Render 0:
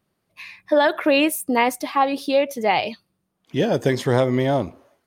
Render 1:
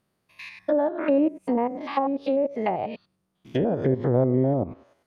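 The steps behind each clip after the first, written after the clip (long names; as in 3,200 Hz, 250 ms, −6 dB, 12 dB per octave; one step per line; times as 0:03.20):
spectrum averaged block by block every 100 ms
treble cut that deepens with the level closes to 610 Hz, closed at −18 dBFS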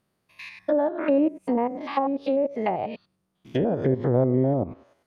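no processing that can be heard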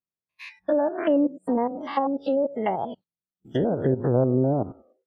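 noise reduction from a noise print of the clip's start 28 dB
wow of a warped record 33 1/3 rpm, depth 160 cents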